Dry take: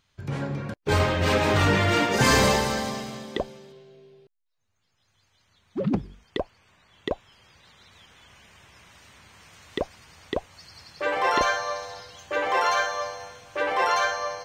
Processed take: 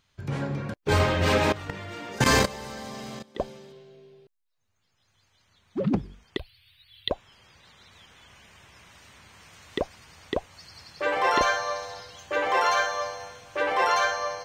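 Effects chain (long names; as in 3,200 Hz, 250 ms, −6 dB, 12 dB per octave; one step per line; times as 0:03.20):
0:01.52–0:03.40: output level in coarse steps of 19 dB
0:06.37–0:07.10: drawn EQ curve 120 Hz 0 dB, 200 Hz −23 dB, 1,000 Hz −19 dB, 4,100 Hz +13 dB, 6,800 Hz −28 dB, 10,000 Hz +11 dB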